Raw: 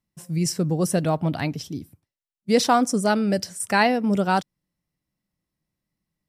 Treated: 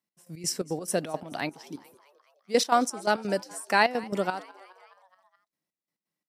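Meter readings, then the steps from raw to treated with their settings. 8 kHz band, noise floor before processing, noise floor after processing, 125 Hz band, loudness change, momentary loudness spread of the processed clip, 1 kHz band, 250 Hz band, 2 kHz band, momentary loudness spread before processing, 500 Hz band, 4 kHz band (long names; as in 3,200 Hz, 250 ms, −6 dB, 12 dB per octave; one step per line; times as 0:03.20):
−4.0 dB, below −85 dBFS, below −85 dBFS, −15.5 dB, −5.5 dB, 16 LU, −4.0 dB, −11.0 dB, −2.5 dB, 11 LU, −4.5 dB, −3.5 dB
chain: high-pass filter 300 Hz 12 dB per octave
gate pattern "x..x.xx.x.xx.x.x" 171 BPM −12 dB
on a send: echo with shifted repeats 211 ms, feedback 62%, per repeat +93 Hz, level −22 dB
on the sum: level −2 dB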